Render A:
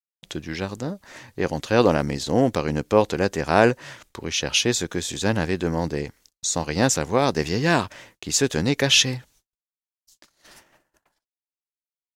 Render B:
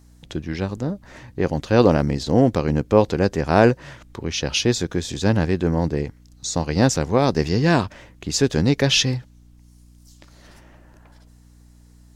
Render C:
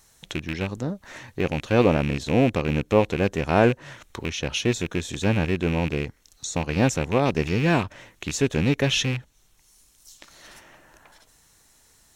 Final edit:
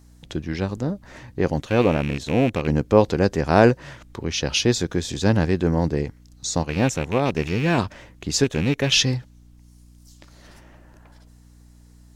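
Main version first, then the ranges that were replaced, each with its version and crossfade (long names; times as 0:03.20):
B
0:01.62–0:02.67: punch in from C
0:06.63–0:07.78: punch in from C
0:08.44–0:08.92: punch in from C
not used: A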